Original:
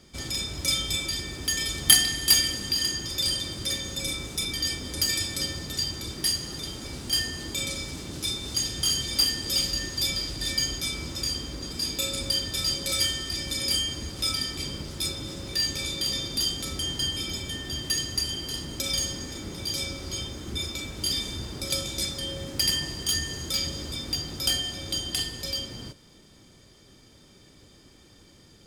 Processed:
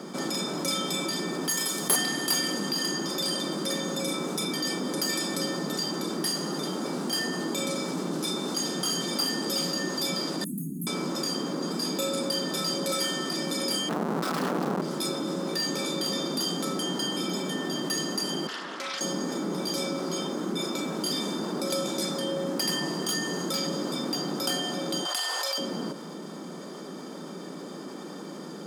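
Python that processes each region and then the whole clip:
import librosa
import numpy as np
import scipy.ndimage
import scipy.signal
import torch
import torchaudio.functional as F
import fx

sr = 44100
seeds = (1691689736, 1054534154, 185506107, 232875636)

y = fx.chain(x, sr, fx.peak_eq(hz=15000.0, db=15.0, octaves=1.6),
    fx.tube_stage(drive_db=8.0, bias=0.7), at=(1.49, 1.96))
y = fx.chain(y, sr, fx.cheby2_bandstop(low_hz=950.0, high_hz=3000.0, order=4, stop_db=80),
    fx.fixed_phaser(hz=2200.0, stages=4),
    fx.env_flatten(amount_pct=50), at=(10.44, 10.87))
y = fx.chain(y, sr, fx.bass_treble(bass_db=7, treble_db=-10),
    fx.schmitt(flips_db=-38.0),
    fx.doppler_dist(depth_ms=0.24), at=(13.89, 14.82))
y = fx.chain(y, sr, fx.bandpass_q(hz=1800.0, q=1.4),
    fx.doppler_dist(depth_ms=0.22), at=(18.47, 19.01))
y = fx.chain(y, sr, fx.highpass(hz=680.0, slope=24),
    fx.clip_hard(threshold_db=-19.0),
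    fx.env_flatten(amount_pct=70), at=(25.05, 25.58))
y = scipy.signal.sosfilt(scipy.signal.ellip(4, 1.0, 40, 170.0, 'highpass', fs=sr, output='sos'), y)
y = fx.high_shelf_res(y, sr, hz=1700.0, db=-9.5, q=1.5)
y = fx.env_flatten(y, sr, amount_pct=50)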